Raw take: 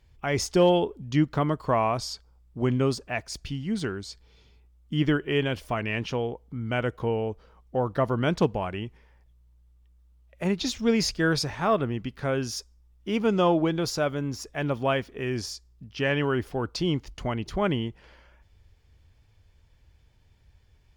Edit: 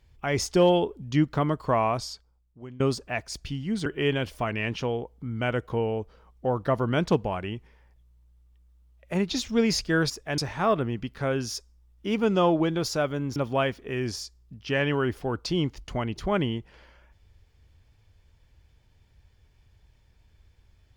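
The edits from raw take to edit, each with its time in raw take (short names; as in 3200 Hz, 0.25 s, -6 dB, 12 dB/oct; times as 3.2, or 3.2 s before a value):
1.95–2.8 fade out quadratic, to -18.5 dB
3.86–5.16 cut
14.38–14.66 move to 11.4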